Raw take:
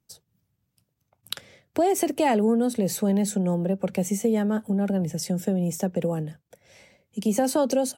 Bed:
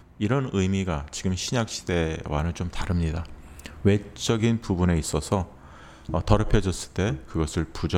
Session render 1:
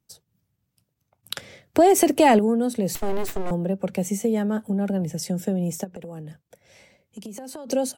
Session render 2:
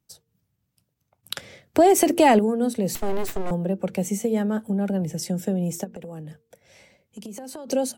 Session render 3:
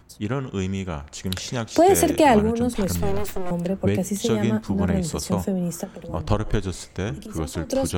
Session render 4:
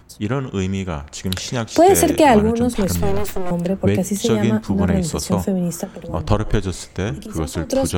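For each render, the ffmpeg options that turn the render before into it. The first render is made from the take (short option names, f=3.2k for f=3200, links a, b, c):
-filter_complex "[0:a]asettb=1/sr,asplit=3[a][b][c];[a]atrim=end=1.364[d];[b]atrim=start=1.36:end=2.39,asetpts=PTS-STARTPTS,afade=t=in:d=0.004:c=qsin,afade=t=out:st=1.026:d=0.004:c=qsin,acontrast=66[e];[c]atrim=start=2.386[f];[d][e]acrossfade=d=0.004:c1=hsin:c2=qsin[g];[g][f]acrossfade=d=0.004:c1=qsin:c2=hsin,asettb=1/sr,asplit=3[h][i][j];[h]atrim=end=2.954[k];[i]atrim=start=2.95:end=3.51,asetpts=PTS-STARTPTS,afade=t=in:d=0.004:c=qsin,afade=t=out:st=0.556:d=0.004:c=qsin,aeval=exprs='abs(val(0))':c=same[l];[j]atrim=start=3.506[m];[k][l]acrossfade=d=0.004:c1=hsin:c2=qsin[n];[n][m]acrossfade=d=0.004:c1=qsin:c2=hsin,asplit=3[o][p][q];[o]afade=t=out:st=5.83:d=0.02[r];[p]acompressor=threshold=-33dB:ratio=12:attack=3.2:release=140:knee=1:detection=peak,afade=t=in:st=5.83:d=0.02,afade=t=out:st=7.67:d=0.02[s];[q]afade=t=in:st=7.67:d=0.02[t];[r][s][t]amix=inputs=3:normalize=0"
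-af "bandreject=f=114.1:t=h:w=4,bandreject=f=228.2:t=h:w=4,bandreject=f=342.3:t=h:w=4,bandreject=f=456.4:t=h:w=4"
-filter_complex "[1:a]volume=-2.5dB[a];[0:a][a]amix=inputs=2:normalize=0"
-af "volume=4.5dB,alimiter=limit=-3dB:level=0:latency=1"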